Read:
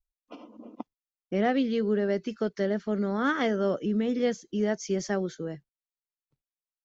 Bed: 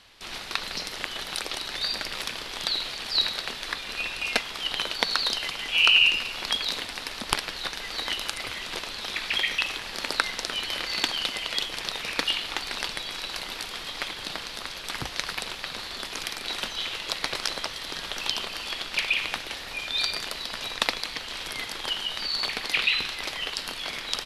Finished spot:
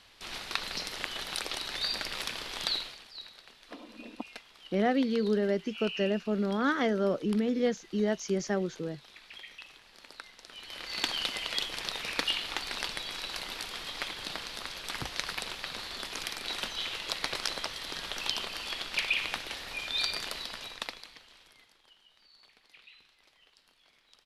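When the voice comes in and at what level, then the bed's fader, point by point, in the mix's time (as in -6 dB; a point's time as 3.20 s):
3.40 s, -1.5 dB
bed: 2.74 s -3.5 dB
3.13 s -21.5 dB
10.39 s -21.5 dB
11.08 s -4 dB
20.38 s -4 dB
21.87 s -32 dB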